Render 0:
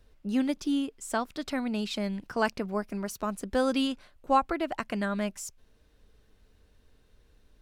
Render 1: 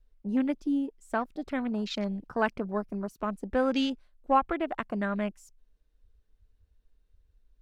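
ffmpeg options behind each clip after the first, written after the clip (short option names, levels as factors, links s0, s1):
-af "afwtdn=0.01"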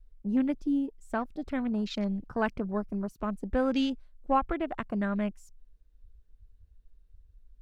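-af "lowshelf=f=170:g=11.5,volume=0.708"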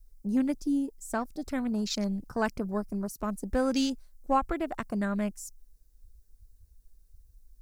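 -af "aexciter=amount=5.1:drive=6.7:freq=4600"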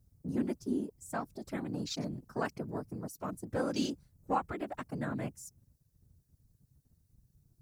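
-af "afftfilt=real='hypot(re,im)*cos(2*PI*random(0))':imag='hypot(re,im)*sin(2*PI*random(1))':win_size=512:overlap=0.75,highpass=f=99:p=1"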